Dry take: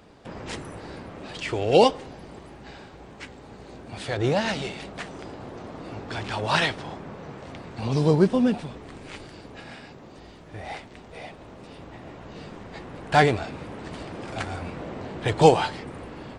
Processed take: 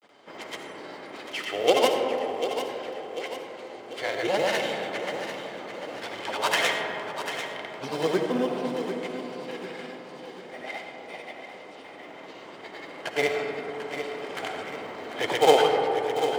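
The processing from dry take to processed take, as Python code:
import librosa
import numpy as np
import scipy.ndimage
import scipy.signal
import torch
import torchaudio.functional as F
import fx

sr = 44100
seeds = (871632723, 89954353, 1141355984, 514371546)

p1 = fx.tracing_dist(x, sr, depth_ms=0.18)
p2 = scipy.signal.sosfilt(scipy.signal.butter(2, 370.0, 'highpass', fs=sr, output='sos'), p1)
p3 = fx.small_body(p2, sr, hz=(2100.0, 3100.0), ring_ms=30, db=11)
p4 = fx.quant_float(p3, sr, bits=2)
p5 = p3 + (p4 * librosa.db_to_amplitude(-7.0))
p6 = fx.granulator(p5, sr, seeds[0], grain_ms=100.0, per_s=20.0, spray_ms=100.0, spread_st=0)
p7 = p6 + fx.echo_feedback(p6, sr, ms=744, feedback_pct=49, wet_db=-9.5, dry=0)
p8 = fx.rev_freeverb(p7, sr, rt60_s=3.4, hf_ratio=0.25, predelay_ms=30, drr_db=3.5)
y = p8 * librosa.db_to_amplitude(-3.5)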